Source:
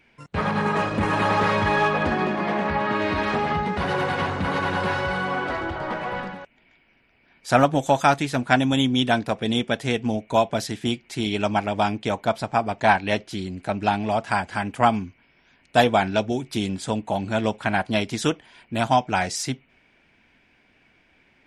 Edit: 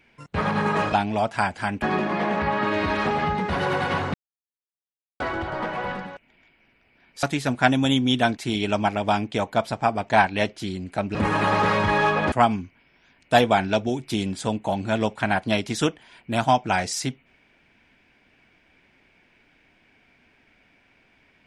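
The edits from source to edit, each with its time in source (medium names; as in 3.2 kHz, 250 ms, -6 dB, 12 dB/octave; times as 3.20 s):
0.93–2.10 s: swap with 13.86–14.75 s
4.42–5.48 s: mute
7.51–8.11 s: delete
9.25–11.08 s: delete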